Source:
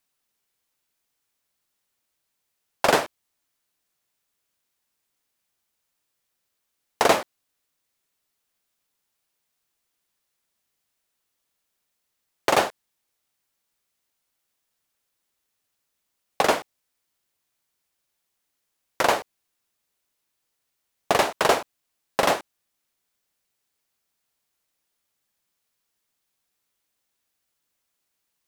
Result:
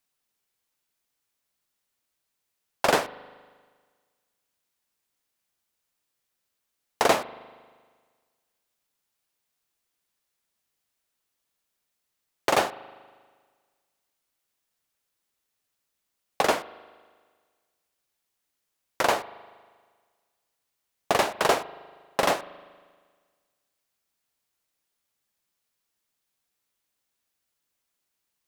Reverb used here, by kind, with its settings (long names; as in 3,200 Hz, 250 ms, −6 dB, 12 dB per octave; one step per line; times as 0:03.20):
spring reverb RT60 1.6 s, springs 39 ms, chirp 25 ms, DRR 17 dB
level −2.5 dB